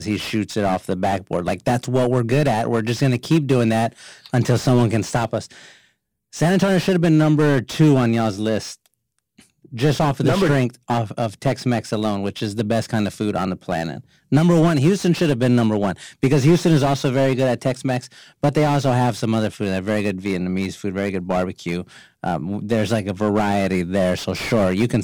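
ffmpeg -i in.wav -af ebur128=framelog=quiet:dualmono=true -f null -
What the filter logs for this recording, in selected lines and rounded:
Integrated loudness:
  I:         -16.8 LUFS
  Threshold: -27.1 LUFS
Loudness range:
  LRA:         4.8 LU
  Threshold: -37.1 LUFS
  LRA low:   -19.9 LUFS
  LRA high:  -15.1 LUFS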